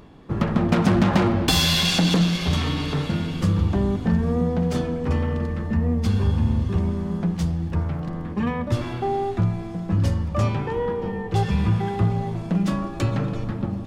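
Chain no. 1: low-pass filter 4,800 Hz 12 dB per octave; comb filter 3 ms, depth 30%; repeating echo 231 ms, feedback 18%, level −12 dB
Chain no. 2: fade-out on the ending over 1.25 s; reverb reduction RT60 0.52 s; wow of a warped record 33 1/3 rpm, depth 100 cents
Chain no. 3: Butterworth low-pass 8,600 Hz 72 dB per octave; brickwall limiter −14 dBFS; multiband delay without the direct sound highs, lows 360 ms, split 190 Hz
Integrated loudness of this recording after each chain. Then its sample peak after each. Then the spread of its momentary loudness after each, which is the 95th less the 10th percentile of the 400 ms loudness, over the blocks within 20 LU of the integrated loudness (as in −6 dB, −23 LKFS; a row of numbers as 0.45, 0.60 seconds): −23.5, −24.5, −25.5 LKFS; −4.5, −5.0, −11.5 dBFS; 8, 10, 5 LU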